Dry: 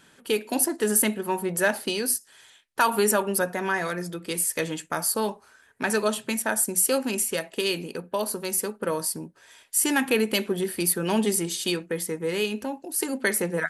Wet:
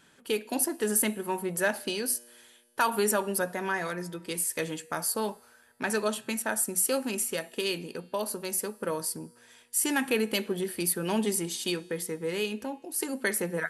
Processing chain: resonator 120 Hz, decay 2 s, mix 40%

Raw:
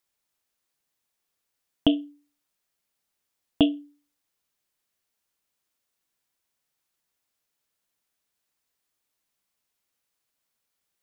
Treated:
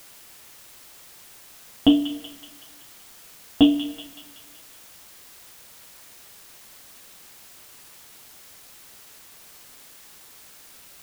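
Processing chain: thin delay 0.188 s, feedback 54%, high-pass 1400 Hz, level -10 dB; two-slope reverb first 0.2 s, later 1.6 s, from -21 dB, DRR -1.5 dB; requantised 8-bit, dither triangular

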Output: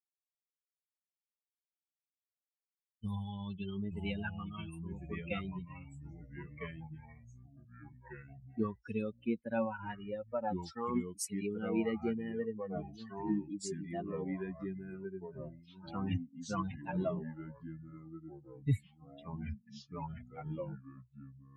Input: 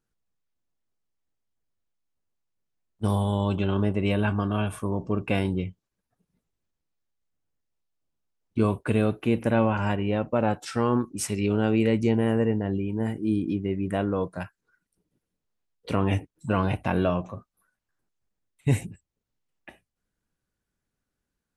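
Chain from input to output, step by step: per-bin expansion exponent 3; echoes that change speed 0.302 s, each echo -3 st, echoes 3, each echo -6 dB; gain -5 dB

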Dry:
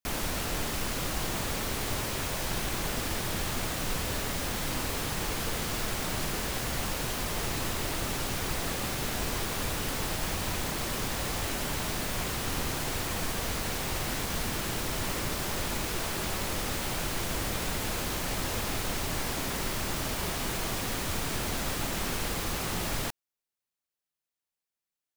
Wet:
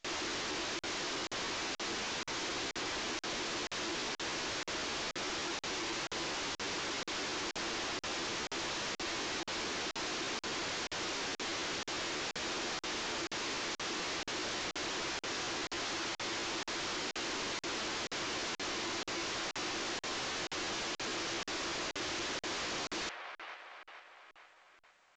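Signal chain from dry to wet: ring modulator 300 Hz; on a send: band-limited delay 0.455 s, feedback 50%, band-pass 1100 Hz, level -12.5 dB; on the sum: soft clip -28 dBFS, distortion -16 dB; low shelf 260 Hz -10.5 dB; pitch shift +2 st; LPF 6300 Hz 24 dB/oct; tilt shelf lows -4 dB, about 1100 Hz; in parallel at -7 dB: sine folder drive 14 dB, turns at -25 dBFS; on the sum: crackling interface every 0.48 s, samples 2048, zero, from 0.79; gain -6 dB; A-law 128 kbps 16000 Hz

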